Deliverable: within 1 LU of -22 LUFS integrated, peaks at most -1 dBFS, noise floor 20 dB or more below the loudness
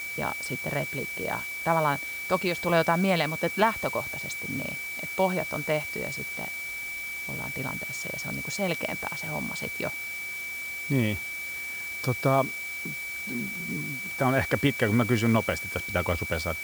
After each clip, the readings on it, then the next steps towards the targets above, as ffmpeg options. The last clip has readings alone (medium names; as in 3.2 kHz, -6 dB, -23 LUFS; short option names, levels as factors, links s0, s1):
steady tone 2.3 kHz; tone level -33 dBFS; noise floor -35 dBFS; noise floor target -49 dBFS; loudness -28.5 LUFS; peak level -9.0 dBFS; loudness target -22.0 LUFS
-> -af "bandreject=f=2300:w=30"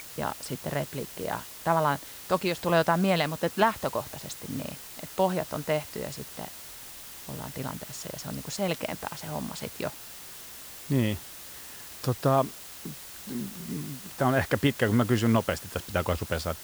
steady tone not found; noise floor -44 dBFS; noise floor target -50 dBFS
-> -af "afftdn=nr=6:nf=-44"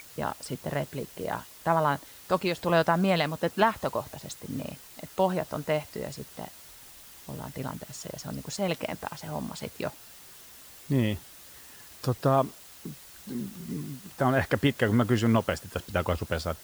noise floor -50 dBFS; loudness -29.5 LUFS; peak level -10.0 dBFS; loudness target -22.0 LUFS
-> -af "volume=2.37"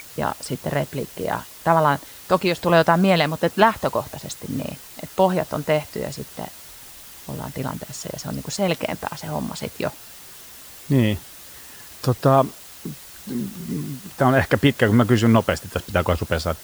loudness -22.0 LUFS; peak level -2.5 dBFS; noise floor -42 dBFS